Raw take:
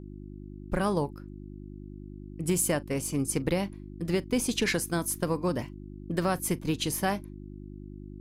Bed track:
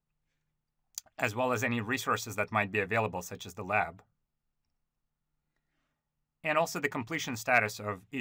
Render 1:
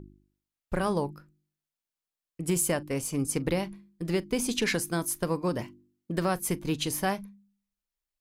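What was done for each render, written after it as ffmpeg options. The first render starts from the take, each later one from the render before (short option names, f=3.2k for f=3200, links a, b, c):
-af "bandreject=f=50:t=h:w=4,bandreject=f=100:t=h:w=4,bandreject=f=150:t=h:w=4,bandreject=f=200:t=h:w=4,bandreject=f=250:t=h:w=4,bandreject=f=300:t=h:w=4,bandreject=f=350:t=h:w=4"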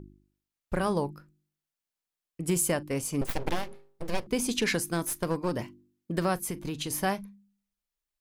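-filter_complex "[0:a]asettb=1/sr,asplit=3[a][b][c];[a]atrim=end=3.214[d];[b]atrim=start=3.21:end=4.27,asetpts=PTS-STARTPTS,afade=t=in:d=0.004:c=qsin,afade=t=out:st=1.056:d=0.004:c=qsin,aeval=exprs='abs(val(0))':c=same[e];[c]atrim=start=4.266[f];[d][e]acrossfade=d=0.004:c1=hsin:c2=qsin[g];[g][f]acrossfade=d=0.004:c1=qsin:c2=hsin,asettb=1/sr,asplit=3[h][i][j];[h]atrim=end=4.934[k];[i]atrim=start=4.93:end=5.52,asetpts=PTS-STARTPTS,afade=t=in:d=0.004:c=qsin,afade=t=out:st=0.586:d=0.004:c=qsin,aeval=exprs='clip(val(0),-1,0.0299)':c=same[l];[j]atrim=start=5.516[m];[k][l]acrossfade=d=0.004:c1=hsin:c2=qsin[n];[n][m]acrossfade=d=0.004:c1=qsin:c2=hsin,asettb=1/sr,asplit=3[o][p][q];[o]atrim=end=6.434[r];[p]atrim=start=6.43:end=6.91,asetpts=PTS-STARTPTS,afade=t=in:d=0.004:c=qsin,afade=t=out:st=0.476:d=0.004:c=qsin,acompressor=threshold=-29dB:ratio=6:attack=3.2:release=140:knee=1:detection=peak[s];[q]atrim=start=6.906[t];[r][s]acrossfade=d=0.004:c1=hsin:c2=qsin[u];[u][t]acrossfade=d=0.004:c1=qsin:c2=hsin"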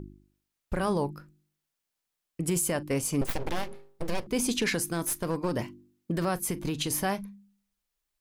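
-filter_complex "[0:a]asplit=2[a][b];[b]acompressor=threshold=-35dB:ratio=6,volume=-2dB[c];[a][c]amix=inputs=2:normalize=0,alimiter=limit=-17.5dB:level=0:latency=1:release=37"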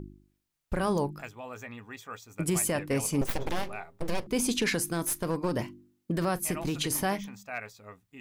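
-filter_complex "[1:a]volume=-12dB[a];[0:a][a]amix=inputs=2:normalize=0"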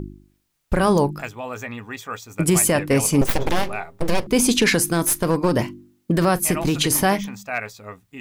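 -af "volume=10.5dB"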